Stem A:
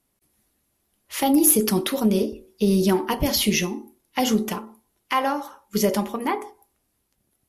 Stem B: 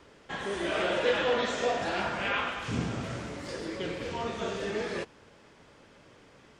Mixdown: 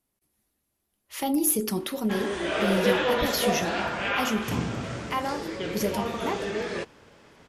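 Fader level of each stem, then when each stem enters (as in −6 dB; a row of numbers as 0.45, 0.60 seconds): −7.0, +2.5 decibels; 0.00, 1.80 seconds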